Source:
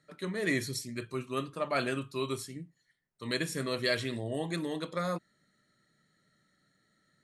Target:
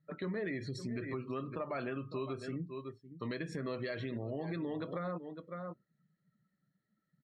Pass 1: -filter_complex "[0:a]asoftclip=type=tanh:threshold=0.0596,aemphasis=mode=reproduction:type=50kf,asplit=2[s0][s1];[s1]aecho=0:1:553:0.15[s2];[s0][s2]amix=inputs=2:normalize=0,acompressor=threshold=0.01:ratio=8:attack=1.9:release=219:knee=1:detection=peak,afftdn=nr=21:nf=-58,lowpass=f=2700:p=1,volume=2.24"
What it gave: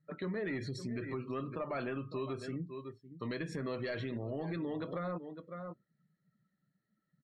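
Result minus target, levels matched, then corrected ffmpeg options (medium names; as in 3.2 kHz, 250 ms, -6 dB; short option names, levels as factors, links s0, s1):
saturation: distortion +11 dB
-filter_complex "[0:a]asoftclip=type=tanh:threshold=0.15,aemphasis=mode=reproduction:type=50kf,asplit=2[s0][s1];[s1]aecho=0:1:553:0.15[s2];[s0][s2]amix=inputs=2:normalize=0,acompressor=threshold=0.01:ratio=8:attack=1.9:release=219:knee=1:detection=peak,afftdn=nr=21:nf=-58,lowpass=f=2700:p=1,volume=2.24"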